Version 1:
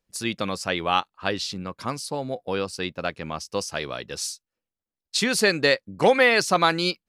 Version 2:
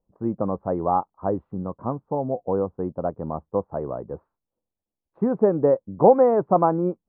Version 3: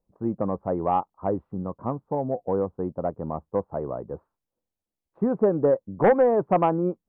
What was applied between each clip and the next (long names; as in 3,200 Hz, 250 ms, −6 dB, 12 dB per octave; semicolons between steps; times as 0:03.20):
Butterworth low-pass 1,000 Hz 36 dB per octave; level +4 dB
sine wavefolder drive 4 dB, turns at −2.5 dBFS; level −9 dB